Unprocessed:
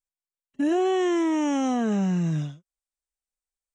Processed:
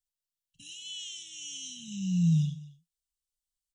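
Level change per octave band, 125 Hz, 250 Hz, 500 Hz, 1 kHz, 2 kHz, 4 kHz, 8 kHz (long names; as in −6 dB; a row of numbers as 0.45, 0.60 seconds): +0.5 dB, −9.0 dB, below −40 dB, below −40 dB, −16.0 dB, +2.0 dB, +2.0 dB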